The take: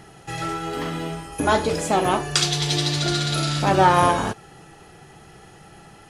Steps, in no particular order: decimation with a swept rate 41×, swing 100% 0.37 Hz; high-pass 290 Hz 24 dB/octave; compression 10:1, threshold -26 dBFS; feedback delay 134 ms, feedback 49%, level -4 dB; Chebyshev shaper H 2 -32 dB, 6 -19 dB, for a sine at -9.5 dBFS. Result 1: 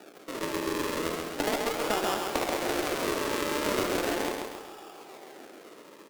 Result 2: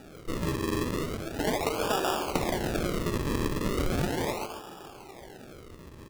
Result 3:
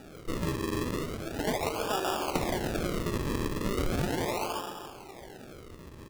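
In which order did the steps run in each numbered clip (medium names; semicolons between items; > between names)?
decimation with a swept rate > high-pass > compression > Chebyshev shaper > feedback delay; Chebyshev shaper > high-pass > compression > feedback delay > decimation with a swept rate; Chebyshev shaper > feedback delay > compression > high-pass > decimation with a swept rate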